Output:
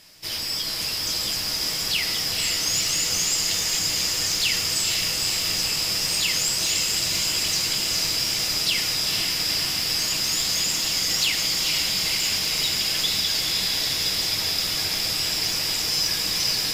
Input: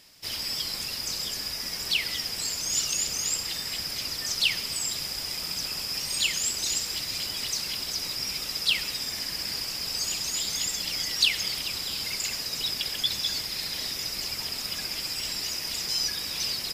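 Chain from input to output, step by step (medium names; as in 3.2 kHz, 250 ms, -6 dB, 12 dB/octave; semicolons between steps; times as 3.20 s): in parallel at +2.5 dB: peak limiter -21.5 dBFS, peak gain reduction 11.5 dB; on the sum: flange 1.6 Hz, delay 9.6 ms, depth 5.7 ms, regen -42%; sine folder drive 4 dB, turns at -10 dBFS; echo that smears into a reverb 483 ms, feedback 77%, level -3 dB; on a send at -7 dB: reverberation RT60 0.60 s, pre-delay 6 ms; on the sum: trim -7.5 dB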